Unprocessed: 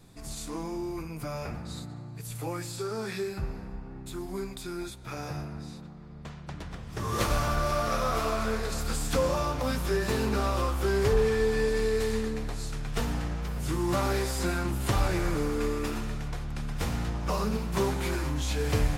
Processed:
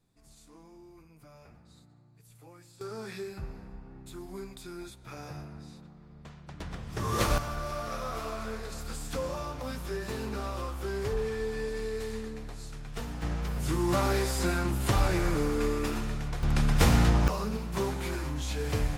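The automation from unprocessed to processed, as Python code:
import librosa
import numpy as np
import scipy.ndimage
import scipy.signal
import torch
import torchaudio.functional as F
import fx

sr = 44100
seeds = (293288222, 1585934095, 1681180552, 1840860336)

y = fx.gain(x, sr, db=fx.steps((0.0, -18.5), (2.81, -6.0), (6.6, 0.5), (7.38, -7.5), (13.22, 0.5), (16.43, 9.0), (17.28, -3.5)))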